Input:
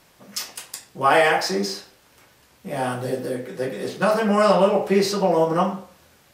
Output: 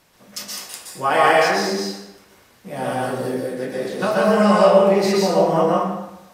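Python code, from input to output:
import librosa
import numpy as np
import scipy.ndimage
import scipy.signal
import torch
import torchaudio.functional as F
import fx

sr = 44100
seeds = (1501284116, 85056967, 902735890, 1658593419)

y = fx.rev_plate(x, sr, seeds[0], rt60_s=0.92, hf_ratio=0.7, predelay_ms=110, drr_db=-3.0)
y = F.gain(torch.from_numpy(y), -2.5).numpy()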